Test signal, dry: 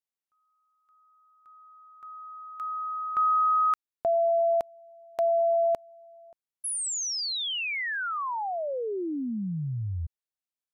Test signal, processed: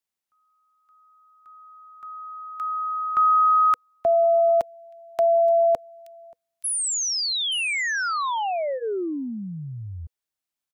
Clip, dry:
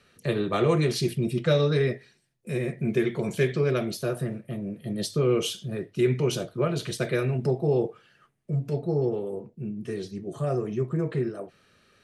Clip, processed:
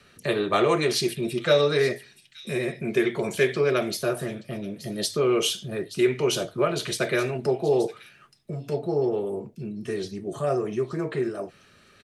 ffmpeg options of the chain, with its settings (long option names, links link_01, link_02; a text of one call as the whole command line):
ffmpeg -i in.wav -filter_complex "[0:a]bandreject=frequency=490:width=12,acrossover=split=330|770|2300[link_01][link_02][link_03][link_04];[link_01]acompressor=threshold=-39dB:ratio=6:attack=4.9:release=195:knee=6:detection=rms[link_05];[link_04]aecho=1:1:876:0.224[link_06];[link_05][link_02][link_03][link_06]amix=inputs=4:normalize=0,volume=5.5dB" out.wav